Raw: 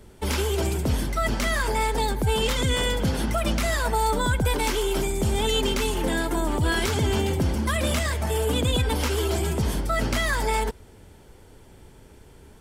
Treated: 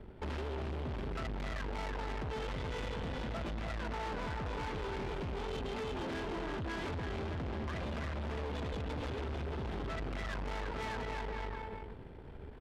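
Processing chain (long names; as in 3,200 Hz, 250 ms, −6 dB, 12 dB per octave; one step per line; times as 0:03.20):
variable-slope delta modulation 64 kbit/s
bouncing-ball delay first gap 330 ms, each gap 0.85×, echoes 5
downward compressor 6 to 1, threshold −26 dBFS, peak gain reduction 9.5 dB
high-frequency loss of the air 440 metres
tube saturation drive 39 dB, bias 0.7
level +2.5 dB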